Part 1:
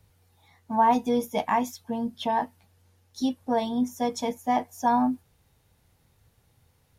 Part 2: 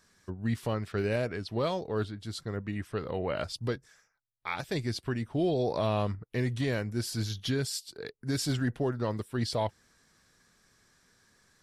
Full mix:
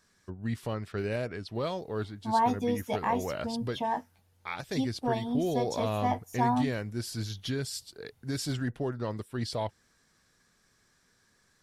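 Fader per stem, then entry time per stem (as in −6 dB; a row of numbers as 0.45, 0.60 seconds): −5.0, −2.5 decibels; 1.55, 0.00 seconds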